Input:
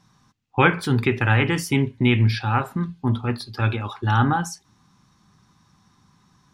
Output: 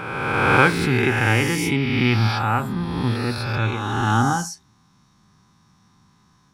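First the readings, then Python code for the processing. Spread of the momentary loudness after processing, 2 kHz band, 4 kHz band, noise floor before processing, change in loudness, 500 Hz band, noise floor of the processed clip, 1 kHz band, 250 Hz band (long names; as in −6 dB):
8 LU, +4.0 dB, +3.5 dB, −62 dBFS, +1.5 dB, +2.5 dB, −59 dBFS, +3.0 dB, +1.0 dB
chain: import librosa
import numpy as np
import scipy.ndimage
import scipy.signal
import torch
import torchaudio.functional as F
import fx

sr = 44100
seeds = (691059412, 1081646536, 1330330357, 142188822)

y = fx.spec_swells(x, sr, rise_s=1.86)
y = F.gain(torch.from_numpy(y), -2.5).numpy()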